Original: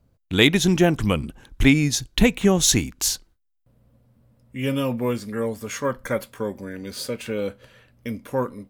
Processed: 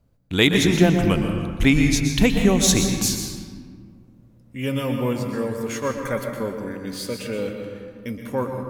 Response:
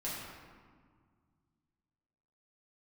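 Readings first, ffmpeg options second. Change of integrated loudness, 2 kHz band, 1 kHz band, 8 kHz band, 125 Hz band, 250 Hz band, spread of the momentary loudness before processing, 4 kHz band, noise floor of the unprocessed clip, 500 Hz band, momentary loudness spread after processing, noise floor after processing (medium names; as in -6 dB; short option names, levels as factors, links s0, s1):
+0.5 dB, +0.5 dB, +0.5 dB, 0.0 dB, +2.0 dB, +1.5 dB, 15 LU, 0.0 dB, -68 dBFS, +0.5 dB, 17 LU, -53 dBFS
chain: -filter_complex "[0:a]asplit=2[s0][s1];[1:a]atrim=start_sample=2205,adelay=119[s2];[s1][s2]afir=irnorm=-1:irlink=0,volume=0.473[s3];[s0][s3]amix=inputs=2:normalize=0,volume=0.891"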